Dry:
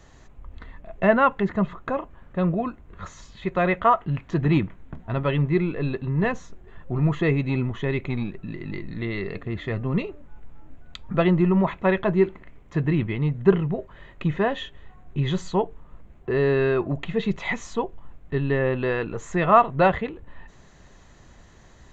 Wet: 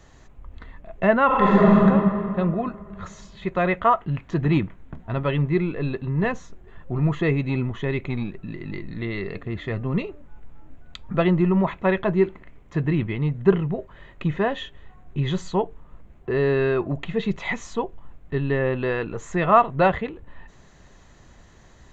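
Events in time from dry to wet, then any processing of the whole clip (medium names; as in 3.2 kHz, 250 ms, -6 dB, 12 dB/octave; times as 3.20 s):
1.26–1.78 s: reverb throw, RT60 2.5 s, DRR -10 dB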